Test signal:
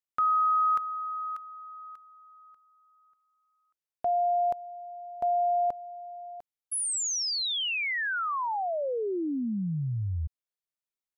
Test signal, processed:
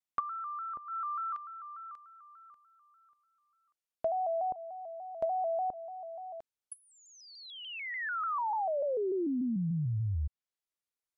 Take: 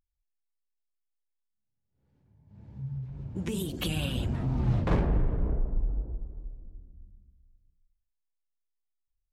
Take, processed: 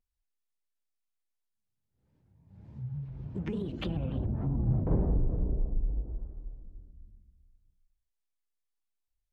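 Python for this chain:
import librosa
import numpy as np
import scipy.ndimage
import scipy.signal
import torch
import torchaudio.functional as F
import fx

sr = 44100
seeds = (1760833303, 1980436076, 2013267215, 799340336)

y = fx.env_lowpass_down(x, sr, base_hz=590.0, full_db=-25.0)
y = fx.vibrato_shape(y, sr, shape='square', rate_hz=3.4, depth_cents=100.0)
y = y * 10.0 ** (-1.5 / 20.0)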